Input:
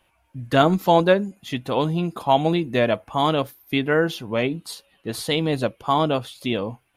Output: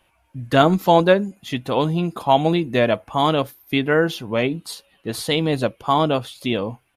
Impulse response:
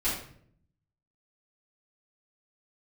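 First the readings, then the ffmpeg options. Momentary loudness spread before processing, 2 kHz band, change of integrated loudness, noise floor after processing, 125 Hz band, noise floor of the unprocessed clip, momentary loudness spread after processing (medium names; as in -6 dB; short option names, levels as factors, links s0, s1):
13 LU, +2.0 dB, +2.0 dB, -63 dBFS, +2.0 dB, -65 dBFS, 13 LU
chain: -af "aresample=32000,aresample=44100,volume=1.26"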